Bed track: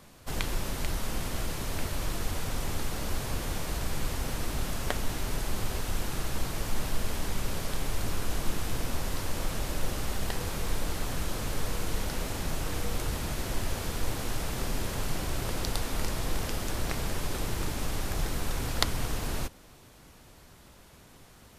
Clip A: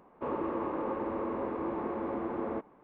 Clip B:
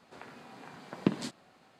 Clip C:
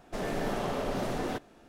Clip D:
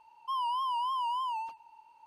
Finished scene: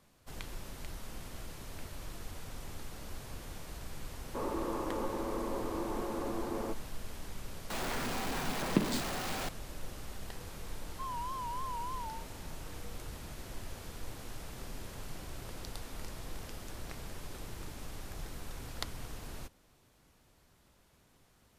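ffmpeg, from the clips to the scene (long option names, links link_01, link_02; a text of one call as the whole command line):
ffmpeg -i bed.wav -i cue0.wav -i cue1.wav -i cue2.wav -i cue3.wav -filter_complex "[0:a]volume=-12.5dB[link_01];[2:a]aeval=exprs='val(0)+0.5*0.0316*sgn(val(0))':channel_layout=same[link_02];[4:a]equalizer=frequency=2900:width_type=o:width=1.9:gain=-13[link_03];[1:a]atrim=end=2.83,asetpts=PTS-STARTPTS,volume=-3dB,afade=type=in:duration=0.004:curve=hsin,afade=type=out:start_time=2.826:duration=0.004:curve=hsin,adelay=182133S[link_04];[link_02]atrim=end=1.79,asetpts=PTS-STARTPTS,volume=-2.5dB,afade=type=in:duration=0.004:curve=hsin,afade=type=out:start_time=1.786:duration=0.004:curve=hsin,adelay=339570S[link_05];[link_03]atrim=end=2.06,asetpts=PTS-STARTPTS,volume=-4.5dB,afade=type=in:duration=0.004:curve=hsin,afade=type=out:start_time=2.056:duration=0.004:curve=hsin,adelay=10710[link_06];[link_01][link_04][link_05][link_06]amix=inputs=4:normalize=0" out.wav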